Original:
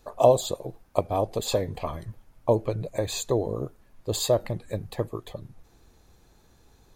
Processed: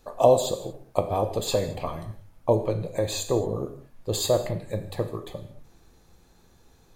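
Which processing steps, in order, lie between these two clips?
reverb whose tail is shaped and stops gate 250 ms falling, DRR 6.5 dB

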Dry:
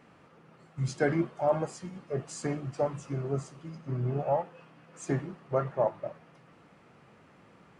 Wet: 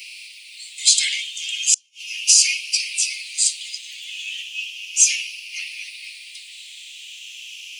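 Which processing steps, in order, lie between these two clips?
rippled gain that drifts along the octave scale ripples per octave 0.94, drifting −0.35 Hz, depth 8 dB
Butterworth high-pass 2,500 Hz 72 dB per octave
0:01.74–0:02.17: gate with flip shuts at −51 dBFS, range −35 dB
boost into a limiter +35.5 dB
level −1 dB

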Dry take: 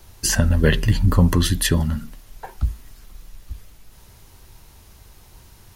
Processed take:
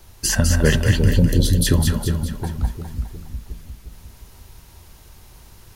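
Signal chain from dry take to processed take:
0:01.11–0:01.67: Chebyshev band-stop filter 550–3,700 Hz, order 3
echo with a time of its own for lows and highs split 460 Hz, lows 356 ms, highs 205 ms, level −4.5 dB

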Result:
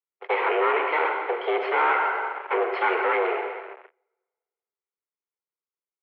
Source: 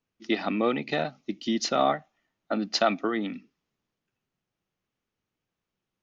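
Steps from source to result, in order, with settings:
lower of the sound and its delayed copy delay 1 ms
dense smooth reverb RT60 1.7 s, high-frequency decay 0.9×, DRR 5.5 dB
leveller curve on the samples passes 5
single-sideband voice off tune +170 Hz 220–2,400 Hz
level −4.5 dB

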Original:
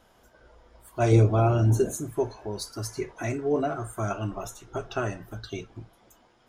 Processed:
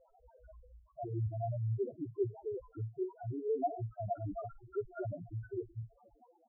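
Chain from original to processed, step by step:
high-shelf EQ 7,500 Hz −5 dB
reversed playback
downward compressor 6 to 1, threshold −35 dBFS, peak gain reduction 19.5 dB
reversed playback
auto-filter low-pass saw up 8.6 Hz 420–1,800 Hz
spectral peaks only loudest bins 2
multiband delay without the direct sound lows, highs 50 ms, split 2,200 Hz
level +2.5 dB

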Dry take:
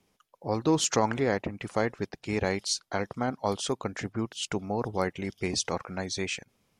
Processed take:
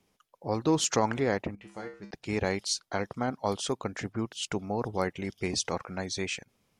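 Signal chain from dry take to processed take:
0:01.55–0:02.11: tuned comb filter 67 Hz, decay 0.41 s, harmonics odd, mix 90%
level −1 dB

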